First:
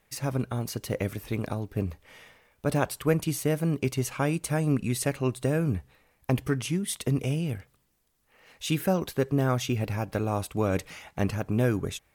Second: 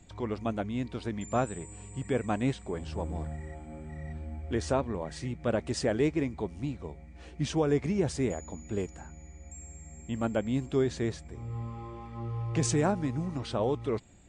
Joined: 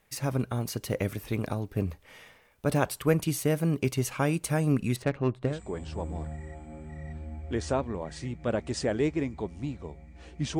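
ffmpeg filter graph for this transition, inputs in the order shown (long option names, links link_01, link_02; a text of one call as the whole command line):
ffmpeg -i cue0.wav -i cue1.wav -filter_complex "[0:a]asettb=1/sr,asplit=3[link_01][link_02][link_03];[link_01]atrim=end=4.964[link_04];[link_02]atrim=start=4.96:end=5.61,asetpts=PTS-STARTPTS,afade=type=in:duration=0.004:curve=qsin,afade=type=out:start_time=0.646:duration=0.004:curve=qsin,adynamicsmooth=sensitivity=2.5:basefreq=1500[link_05];[link_03]atrim=start=5.606[link_06];[link_04][link_05]acrossfade=duration=0.004:curve1=hsin:curve2=qsin[link_07];[link_07][link_06]acrossfade=duration=0.004:curve1=qsin:curve2=hsin,apad=whole_dur=10.59,atrim=end=10.59,atrim=end=5.61,asetpts=PTS-STARTPTS[link_08];[1:a]atrim=start=2.43:end=7.59,asetpts=PTS-STARTPTS[link_09];[link_08][link_09]acrossfade=duration=0.18:curve1=tri:curve2=tri" out.wav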